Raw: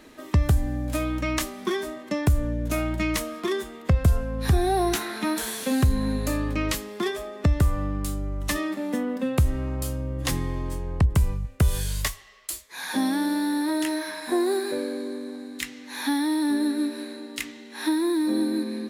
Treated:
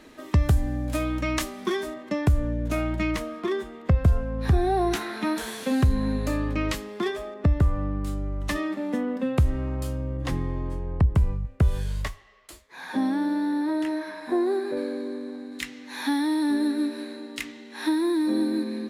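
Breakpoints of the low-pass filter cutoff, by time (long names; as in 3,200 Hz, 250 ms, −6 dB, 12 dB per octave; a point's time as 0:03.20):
low-pass filter 6 dB per octave
8,400 Hz
from 0:01.94 3,500 Hz
from 0:03.11 2,000 Hz
from 0:04.91 3,600 Hz
from 0:07.34 1,400 Hz
from 0:08.07 3,000 Hz
from 0:10.17 1,300 Hz
from 0:14.77 2,700 Hz
from 0:15.52 5,200 Hz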